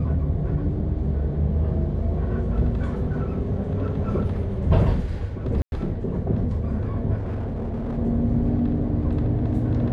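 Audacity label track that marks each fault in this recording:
5.620000	5.720000	dropout 101 ms
7.170000	7.990000	clipped -24.5 dBFS

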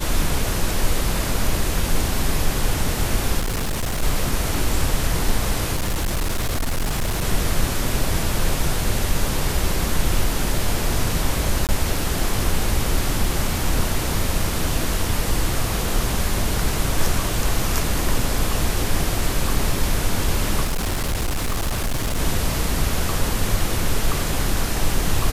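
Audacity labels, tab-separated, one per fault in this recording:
3.390000	4.030000	clipped -19.5 dBFS
5.750000	7.240000	clipped -18 dBFS
11.670000	11.690000	dropout 18 ms
20.640000	22.190000	clipped -18.5 dBFS

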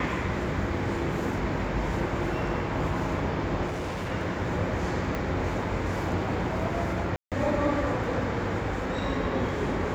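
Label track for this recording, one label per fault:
3.660000	4.120000	clipped -28.5 dBFS
5.150000	5.150000	pop -17 dBFS
7.160000	7.320000	dropout 157 ms

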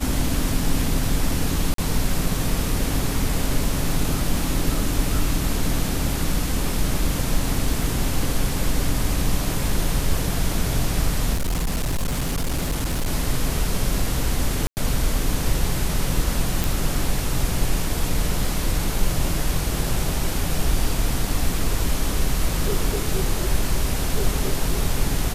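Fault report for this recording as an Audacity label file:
1.740000	1.780000	dropout 43 ms
7.830000	7.830000	dropout 2.2 ms
11.330000	13.080000	clipped -19 dBFS
14.670000	14.770000	dropout 99 ms
16.640000	16.640000	pop

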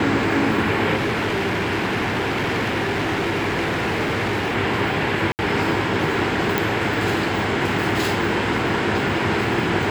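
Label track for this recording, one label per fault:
0.950000	4.550000	clipped -18.5 dBFS
5.320000	5.390000	dropout 69 ms
6.580000	6.580000	pop

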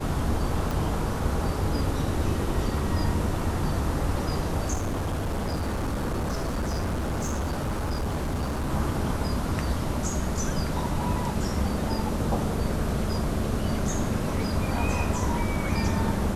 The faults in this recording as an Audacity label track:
0.710000	0.710000	pop
4.730000	8.720000	clipped -24.5 dBFS

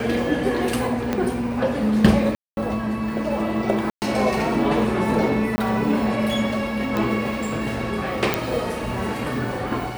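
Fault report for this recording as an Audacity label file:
1.130000	1.130000	pop -9 dBFS
2.350000	2.570000	dropout 221 ms
3.900000	4.020000	dropout 119 ms
5.560000	5.580000	dropout 20 ms
6.970000	6.970000	pop -11 dBFS
8.340000	8.340000	pop -4 dBFS

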